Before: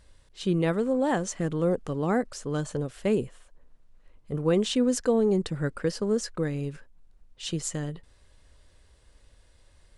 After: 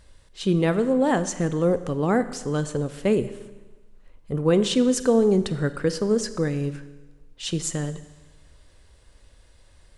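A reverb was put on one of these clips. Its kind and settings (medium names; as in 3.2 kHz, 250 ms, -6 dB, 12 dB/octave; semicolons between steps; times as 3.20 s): Schroeder reverb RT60 1.2 s, combs from 31 ms, DRR 12.5 dB; trim +4 dB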